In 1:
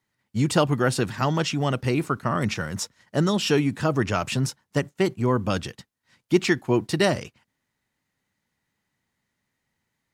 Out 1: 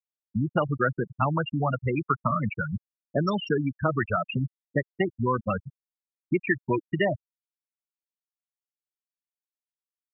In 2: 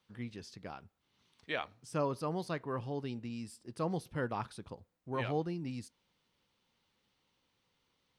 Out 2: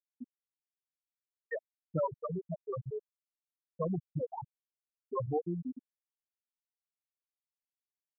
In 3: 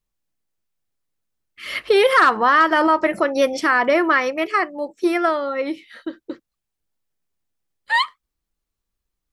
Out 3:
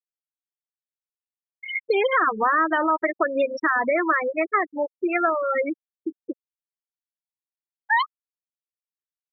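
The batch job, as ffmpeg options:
ffmpeg -i in.wav -filter_complex "[0:a]acrossover=split=100|700|1600[link_01][link_02][link_03][link_04];[link_01]acompressor=threshold=-45dB:ratio=4[link_05];[link_02]acompressor=threshold=-33dB:ratio=4[link_06];[link_03]acompressor=threshold=-31dB:ratio=4[link_07];[link_04]acompressor=threshold=-33dB:ratio=4[link_08];[link_05][link_06][link_07][link_08]amix=inputs=4:normalize=0,afftfilt=real='re*gte(hypot(re,im),0.112)':imag='im*gte(hypot(re,im),0.112)':win_size=1024:overlap=0.75,volume=6dB" out.wav

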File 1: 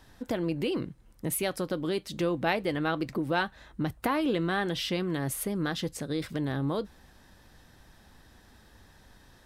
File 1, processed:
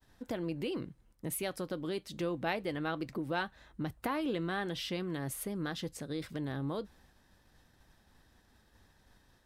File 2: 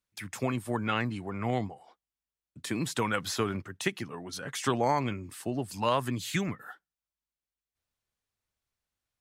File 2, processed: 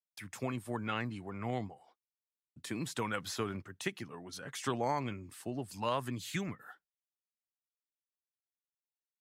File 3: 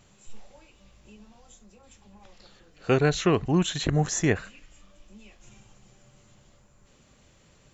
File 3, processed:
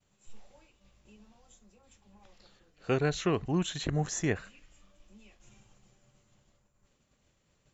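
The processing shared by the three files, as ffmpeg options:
ffmpeg -i in.wav -af "agate=range=-33dB:threshold=-52dB:ratio=3:detection=peak,volume=-6.5dB" out.wav

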